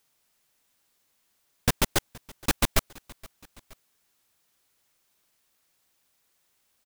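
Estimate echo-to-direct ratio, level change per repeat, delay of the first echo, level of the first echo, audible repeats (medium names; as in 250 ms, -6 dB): -21.5 dB, -4.5 dB, 471 ms, -23.0 dB, 2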